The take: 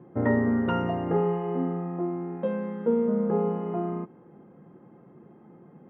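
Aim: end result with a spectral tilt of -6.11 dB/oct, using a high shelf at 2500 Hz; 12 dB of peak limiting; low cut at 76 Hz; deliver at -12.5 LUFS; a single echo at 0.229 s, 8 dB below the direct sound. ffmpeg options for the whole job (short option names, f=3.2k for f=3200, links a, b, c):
-af "highpass=76,highshelf=f=2.5k:g=4.5,alimiter=limit=-23dB:level=0:latency=1,aecho=1:1:229:0.398,volume=18.5dB"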